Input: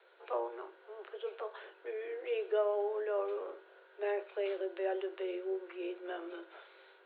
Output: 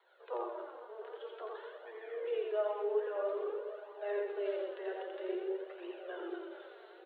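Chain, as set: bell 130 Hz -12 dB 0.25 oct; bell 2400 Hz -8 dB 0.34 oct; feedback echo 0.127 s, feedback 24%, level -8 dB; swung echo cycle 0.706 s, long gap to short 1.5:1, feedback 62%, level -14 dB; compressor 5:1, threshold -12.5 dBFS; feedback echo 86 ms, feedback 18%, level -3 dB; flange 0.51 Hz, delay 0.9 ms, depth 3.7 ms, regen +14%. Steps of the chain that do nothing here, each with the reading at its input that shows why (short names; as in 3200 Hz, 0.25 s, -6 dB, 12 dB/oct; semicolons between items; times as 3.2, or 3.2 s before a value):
bell 130 Hz: input band starts at 320 Hz; compressor, threshold -12.5 dBFS: input peak -21.0 dBFS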